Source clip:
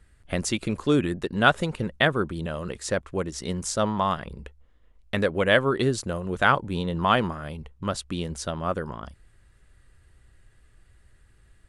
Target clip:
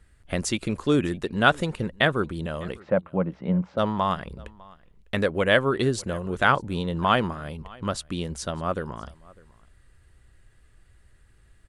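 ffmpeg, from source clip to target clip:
-filter_complex "[0:a]asplit=3[s0][s1][s2];[s0]afade=t=out:st=2.78:d=0.02[s3];[s1]highpass=120,equalizer=f=180:t=q:w=4:g=10,equalizer=f=390:t=q:w=4:g=-5,equalizer=f=560:t=q:w=4:g=6,equalizer=f=820:t=q:w=4:g=5,equalizer=f=1800:t=q:w=4:g=-7,lowpass=f=2200:w=0.5412,lowpass=f=2200:w=1.3066,afade=t=in:st=2.78:d=0.02,afade=t=out:st=3.77:d=0.02[s4];[s2]afade=t=in:st=3.77:d=0.02[s5];[s3][s4][s5]amix=inputs=3:normalize=0,aecho=1:1:602:0.0631"

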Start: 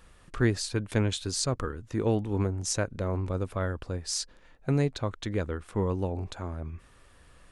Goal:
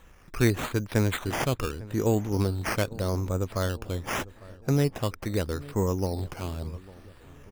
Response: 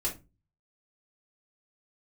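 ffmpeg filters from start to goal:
-filter_complex "[0:a]acrusher=samples=9:mix=1:aa=0.000001:lfo=1:lforange=5.4:lforate=0.82,asplit=2[s0][s1];[s1]adelay=851,lowpass=f=1600:p=1,volume=0.106,asplit=2[s2][s3];[s3]adelay=851,lowpass=f=1600:p=1,volume=0.51,asplit=2[s4][s5];[s5]adelay=851,lowpass=f=1600:p=1,volume=0.51,asplit=2[s6][s7];[s7]adelay=851,lowpass=f=1600:p=1,volume=0.51[s8];[s2][s4][s6][s8]amix=inputs=4:normalize=0[s9];[s0][s9]amix=inputs=2:normalize=0,volume=1.26"

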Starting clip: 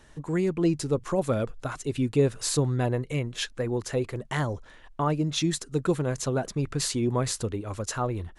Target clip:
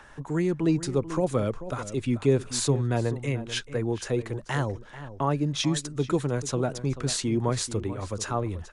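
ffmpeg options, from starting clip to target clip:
-filter_complex "[0:a]acrossover=split=200|780|2000[s0][s1][s2][s3];[s2]acompressor=mode=upward:threshold=0.00708:ratio=2.5[s4];[s0][s1][s4][s3]amix=inputs=4:normalize=0,asplit=2[s5][s6];[s6]adelay=419.8,volume=0.224,highshelf=f=4000:g=-9.45[s7];[s5][s7]amix=inputs=2:normalize=0,asetrate=42336,aresample=44100"

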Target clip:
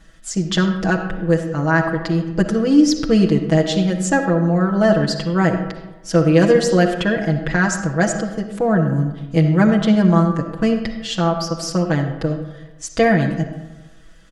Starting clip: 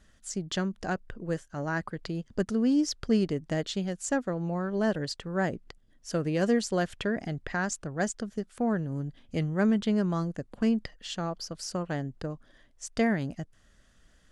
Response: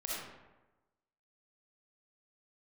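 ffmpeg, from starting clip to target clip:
-filter_complex "[0:a]aecho=1:1:6.1:0.95,asplit=2[s0][s1];[1:a]atrim=start_sample=2205,lowpass=5300[s2];[s1][s2]afir=irnorm=-1:irlink=0,volume=0.531[s3];[s0][s3]amix=inputs=2:normalize=0,volume=2.24"

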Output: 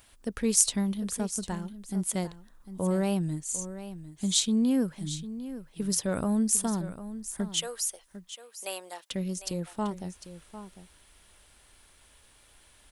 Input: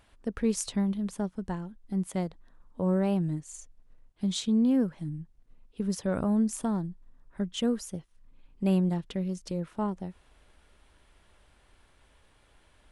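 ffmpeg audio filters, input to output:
-filter_complex "[0:a]asettb=1/sr,asplit=3[s0][s1][s2];[s0]atrim=end=7.574[s3];[s1]atrim=start=7.57:end=9.11,asetpts=PTS-STARTPTS,afade=t=in:d=0.004:c=qsin,afade=t=out:st=1.536:d=0.004:c=qsin,highpass=f=550:w=0.5412,highpass=f=550:w=1.3066[s4];[s2]atrim=start=9.106[s5];[s3][s4]acrossfade=d=0.004:c1=hsin:c2=qsin[s6];[s6][s5]acrossfade=d=0.004:c1=qsin:c2=hsin,crystalizer=i=4:c=0,aecho=1:1:751:0.224,volume=0.891"

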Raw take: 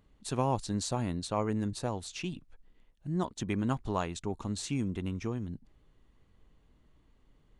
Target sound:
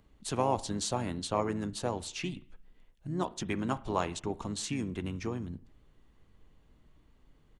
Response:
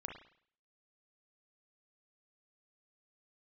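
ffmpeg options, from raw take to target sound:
-filter_complex "[0:a]acrossover=split=290|3000[s0][s1][s2];[s0]acompressor=threshold=0.01:ratio=3[s3];[s3][s1][s2]amix=inputs=3:normalize=0,asplit=2[s4][s5];[s5]asetrate=35002,aresample=44100,atempo=1.25992,volume=0.316[s6];[s4][s6]amix=inputs=2:normalize=0,asplit=2[s7][s8];[1:a]atrim=start_sample=2205[s9];[s8][s9]afir=irnorm=-1:irlink=0,volume=0.335[s10];[s7][s10]amix=inputs=2:normalize=0"

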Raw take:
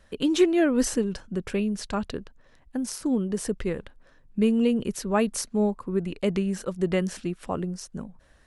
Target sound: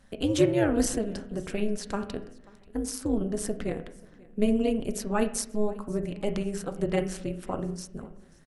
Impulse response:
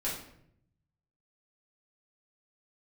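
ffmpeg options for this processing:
-filter_complex "[0:a]equalizer=f=10000:w=0.68:g=4.5,bandreject=f=99.18:t=h:w=4,bandreject=f=198.36:t=h:w=4,bandreject=f=297.54:t=h:w=4,bandreject=f=396.72:t=h:w=4,bandreject=f=495.9:t=h:w=4,bandreject=f=595.08:t=h:w=4,bandreject=f=694.26:t=h:w=4,bandreject=f=793.44:t=h:w=4,bandreject=f=892.62:t=h:w=4,bandreject=f=991.8:t=h:w=4,bandreject=f=1090.98:t=h:w=4,bandreject=f=1190.16:t=h:w=4,bandreject=f=1289.34:t=h:w=4,bandreject=f=1388.52:t=h:w=4,bandreject=f=1487.7:t=h:w=4,bandreject=f=1586.88:t=h:w=4,bandreject=f=1686.06:t=h:w=4,bandreject=f=1785.24:t=h:w=4,bandreject=f=1884.42:t=h:w=4,bandreject=f=1983.6:t=h:w=4,bandreject=f=2082.78:t=h:w=4,bandreject=f=2181.96:t=h:w=4,bandreject=f=2281.14:t=h:w=4,bandreject=f=2380.32:t=h:w=4,bandreject=f=2479.5:t=h:w=4,bandreject=f=2578.68:t=h:w=4,bandreject=f=2677.86:t=h:w=4,bandreject=f=2777.04:t=h:w=4,bandreject=f=2876.22:t=h:w=4,bandreject=f=2975.4:t=h:w=4,bandreject=f=3074.58:t=h:w=4,tremolo=f=210:d=0.889,aecho=1:1:536|1072:0.0631|0.0227,asplit=2[s0][s1];[1:a]atrim=start_sample=2205,lowpass=2500[s2];[s1][s2]afir=irnorm=-1:irlink=0,volume=0.224[s3];[s0][s3]amix=inputs=2:normalize=0"

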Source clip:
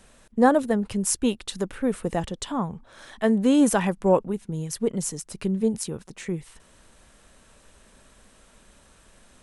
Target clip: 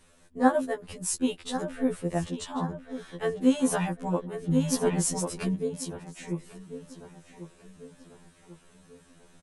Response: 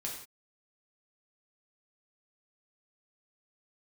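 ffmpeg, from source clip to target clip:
-filter_complex "[0:a]asplit=2[s0][s1];[s1]adelay=1093,lowpass=f=3500:p=1,volume=0.282,asplit=2[s2][s3];[s3]adelay=1093,lowpass=f=3500:p=1,volume=0.48,asplit=2[s4][s5];[s5]adelay=1093,lowpass=f=3500:p=1,volume=0.48,asplit=2[s6][s7];[s7]adelay=1093,lowpass=f=3500:p=1,volume=0.48,asplit=2[s8][s9];[s9]adelay=1093,lowpass=f=3500:p=1,volume=0.48[s10];[s0][s2][s4][s6][s8][s10]amix=inputs=6:normalize=0,asettb=1/sr,asplit=3[s11][s12][s13];[s11]atrim=end=4.444[s14];[s12]atrim=start=4.44:end=5.55,asetpts=PTS-STARTPTS,afade=t=in:d=0.004:c=qsin,afade=t=out:st=1.106:d=0.004:c=qsin,acontrast=80[s15];[s13]atrim=start=5.546[s16];[s14][s15]acrossfade=d=0.004:c1=hsin:c2=qsin[s17];[s17][s16]acrossfade=d=0.004:c1=qsin:c2=hsin,afftfilt=real='re*2*eq(mod(b,4),0)':imag='im*2*eq(mod(b,4),0)':win_size=2048:overlap=0.75,volume=0.75"

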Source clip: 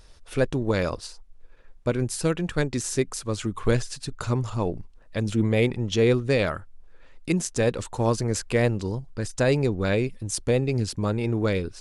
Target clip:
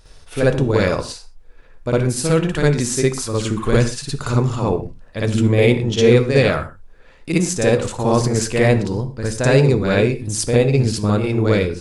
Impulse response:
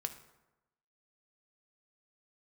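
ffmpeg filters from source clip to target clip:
-filter_complex "[0:a]asplit=2[s0][s1];[1:a]atrim=start_sample=2205,afade=t=out:st=0.18:d=0.01,atrim=end_sample=8379,adelay=57[s2];[s1][s2]afir=irnorm=-1:irlink=0,volume=2.11[s3];[s0][s3]amix=inputs=2:normalize=0,volume=1.12"

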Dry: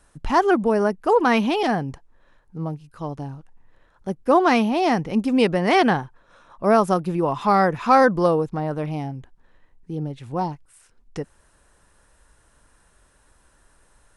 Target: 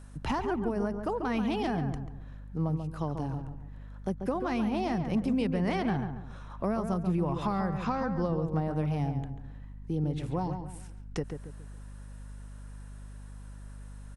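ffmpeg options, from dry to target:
-filter_complex "[0:a]asettb=1/sr,asplit=3[s0][s1][s2];[s0]atrim=end=7.844[s3];[s1]atrim=start=7.84:end=8.48,asetpts=PTS-STARTPTS,afade=t=in:d=0.004:c=qsin,afade=t=out:st=0.636:d=0.004:c=qsin,lowpass=f=7100:w=0.5412,lowpass=f=7100:w=1.3066[s4];[s2]atrim=start=8.476[s5];[s3][s4]acrossfade=d=0.004:c1=hsin:c2=qsin[s6];[s6][s5]acrossfade=d=0.004:c1=qsin:c2=hsin,acrossover=split=160[s7][s8];[s7]aeval=exprs='0.0376*(abs(mod(val(0)/0.0376+3,4)-2)-1)':c=same[s9];[s8]acompressor=threshold=0.0316:ratio=12[s10];[s9][s10]amix=inputs=2:normalize=0,aeval=exprs='val(0)+0.00447*(sin(2*PI*50*n/s)+sin(2*PI*2*50*n/s)/2+sin(2*PI*3*50*n/s)/3+sin(2*PI*4*50*n/s)/4+sin(2*PI*5*50*n/s)/5)':c=same,asplit=2[s11][s12];[s12]adelay=139,lowpass=f=1800:p=1,volume=0.473,asplit=2[s13][s14];[s14]adelay=139,lowpass=f=1800:p=1,volume=0.37,asplit=2[s15][s16];[s16]adelay=139,lowpass=f=1800:p=1,volume=0.37,asplit=2[s17][s18];[s18]adelay=139,lowpass=f=1800:p=1,volume=0.37[s19];[s11][s13][s15][s17][s19]amix=inputs=5:normalize=0"

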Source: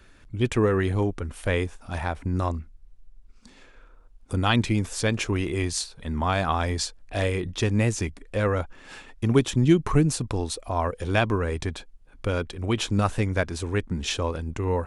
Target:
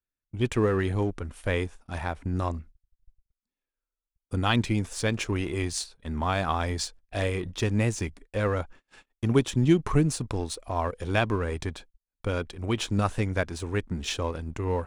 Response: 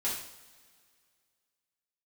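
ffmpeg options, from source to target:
-filter_complex "[0:a]agate=range=0.0158:threshold=0.00891:ratio=16:detection=peak,asplit=2[s0][s1];[s1]aeval=exprs='sgn(val(0))*max(abs(val(0))-0.0178,0)':c=same,volume=0.501[s2];[s0][s2]amix=inputs=2:normalize=0,volume=0.531"

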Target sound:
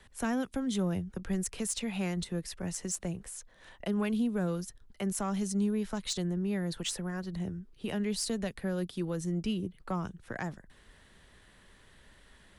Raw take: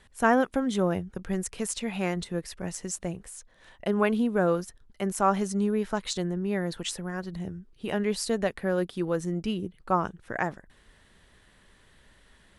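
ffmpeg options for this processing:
-filter_complex "[0:a]acrossover=split=230|3000[s0][s1][s2];[s1]acompressor=threshold=0.01:ratio=2.5[s3];[s0][s3][s2]amix=inputs=3:normalize=0,acrossover=split=240[s4][s5];[s5]asoftclip=type=tanh:threshold=0.0708[s6];[s4][s6]amix=inputs=2:normalize=0"

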